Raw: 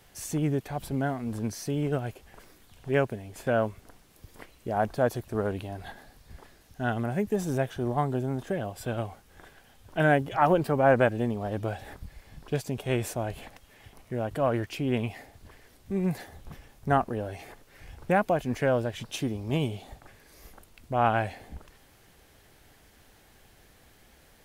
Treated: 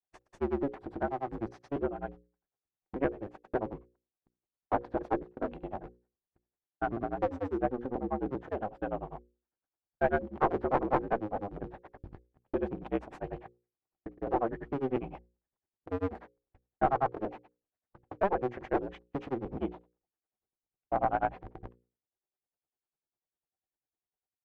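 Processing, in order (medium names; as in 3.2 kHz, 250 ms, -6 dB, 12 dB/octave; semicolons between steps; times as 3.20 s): cycle switcher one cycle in 2, inverted; granulator 94 ms, grains 10 per s; gate -44 dBFS, range -41 dB; small resonant body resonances 350/760 Hz, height 6 dB; in parallel at 0 dB: compression, threshold -34 dBFS, peak gain reduction 16.5 dB; on the sum: bass shelf 280 Hz -9.5 dB; one-sided clip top -23.5 dBFS; low-pass 1.2 kHz 12 dB/octave; hum notches 60/120/180/240/300/360/420/480/540 Hz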